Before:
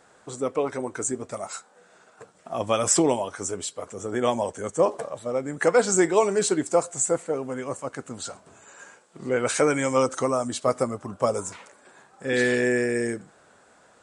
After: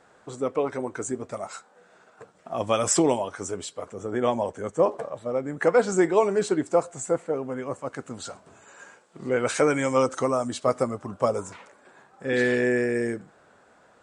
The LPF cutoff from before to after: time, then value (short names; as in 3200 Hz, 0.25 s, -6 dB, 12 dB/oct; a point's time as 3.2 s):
LPF 6 dB/oct
3600 Hz
from 2.58 s 7600 Hz
from 3.18 s 4300 Hz
from 3.89 s 2200 Hz
from 7.86 s 5200 Hz
from 11.28 s 3000 Hz